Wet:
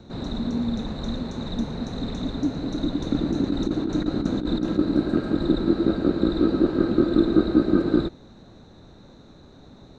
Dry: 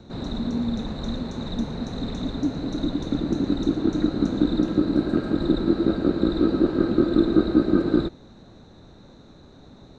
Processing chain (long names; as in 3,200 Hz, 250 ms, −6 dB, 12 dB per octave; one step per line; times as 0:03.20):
0:03.02–0:04.79: compressor whose output falls as the input rises −22 dBFS, ratio −0.5